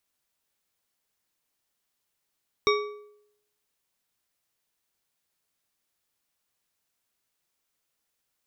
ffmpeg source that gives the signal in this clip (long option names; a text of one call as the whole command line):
ffmpeg -f lavfi -i "aevalsrc='0.112*pow(10,-3*t/0.77)*sin(2*PI*417*t)+0.0841*pow(10,-3*t/0.568)*sin(2*PI*1149.7*t)+0.0631*pow(10,-3*t/0.464)*sin(2*PI*2253.5*t)+0.0473*pow(10,-3*t/0.399)*sin(2*PI*3725.1*t)+0.0355*pow(10,-3*t/0.354)*sin(2*PI*5562.8*t)':duration=1.55:sample_rate=44100" out.wav